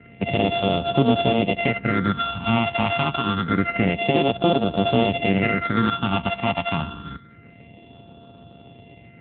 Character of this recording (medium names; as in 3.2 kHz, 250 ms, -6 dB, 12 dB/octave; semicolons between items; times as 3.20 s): a buzz of ramps at a fixed pitch in blocks of 64 samples; phasing stages 6, 0.27 Hz, lowest notch 440–1900 Hz; a quantiser's noise floor 12-bit, dither none; AMR-NB